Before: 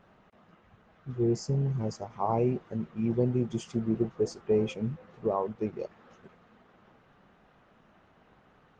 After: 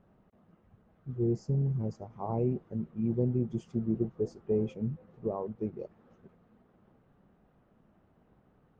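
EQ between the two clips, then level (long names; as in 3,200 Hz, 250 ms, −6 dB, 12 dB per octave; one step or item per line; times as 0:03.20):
tilt shelving filter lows +8 dB, about 760 Hz
−8.0 dB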